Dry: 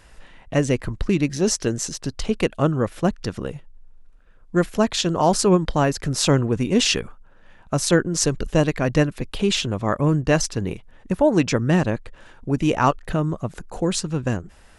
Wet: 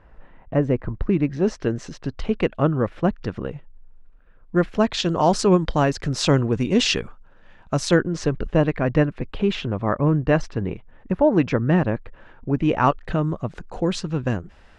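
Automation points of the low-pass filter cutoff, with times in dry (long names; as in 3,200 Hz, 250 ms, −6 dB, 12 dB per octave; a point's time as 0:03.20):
0:00.82 1,300 Hz
0:01.85 2,600 Hz
0:04.56 2,600 Hz
0:05.11 5,500 Hz
0:07.85 5,500 Hz
0:08.31 2,200 Hz
0:12.59 2,200 Hz
0:13.04 4,100 Hz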